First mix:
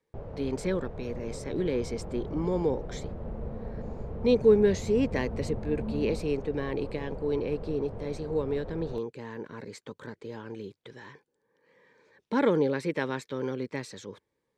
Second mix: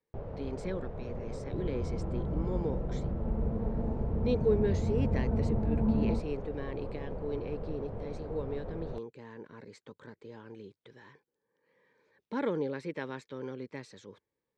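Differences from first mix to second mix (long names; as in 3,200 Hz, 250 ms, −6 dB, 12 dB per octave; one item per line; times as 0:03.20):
speech −7.5 dB
second sound +7.5 dB
master: add high-frequency loss of the air 50 metres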